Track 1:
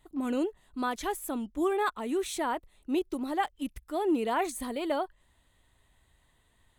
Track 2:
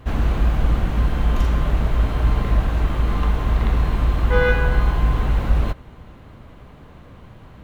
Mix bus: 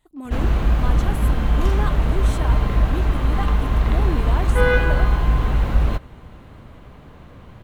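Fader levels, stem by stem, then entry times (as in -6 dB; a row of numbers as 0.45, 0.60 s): -2.0, +0.5 dB; 0.00, 0.25 s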